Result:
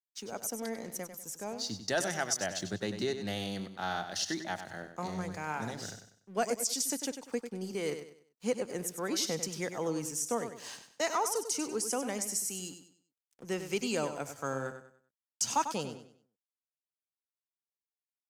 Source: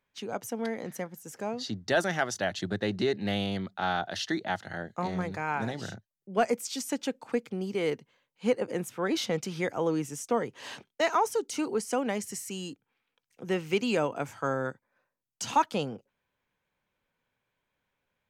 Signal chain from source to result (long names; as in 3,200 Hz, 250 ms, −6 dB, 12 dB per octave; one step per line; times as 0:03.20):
flat-topped bell 7,800 Hz +11.5 dB
dead-zone distortion −53 dBFS
on a send: repeating echo 97 ms, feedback 33%, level −9.5 dB
on the sum: level −5.5 dB